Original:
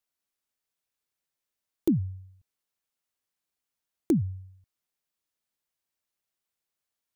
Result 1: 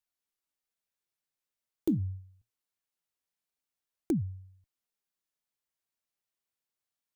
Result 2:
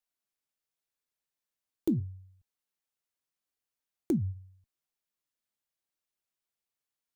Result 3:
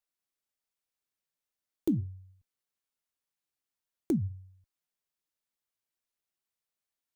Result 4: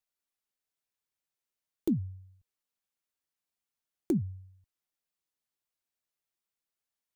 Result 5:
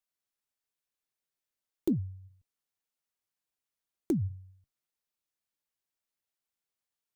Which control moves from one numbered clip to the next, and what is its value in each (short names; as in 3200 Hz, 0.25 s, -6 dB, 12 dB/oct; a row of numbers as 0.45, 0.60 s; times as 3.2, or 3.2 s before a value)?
flange, rate: 0.24, 0.82, 1.3, 0.43, 2 Hz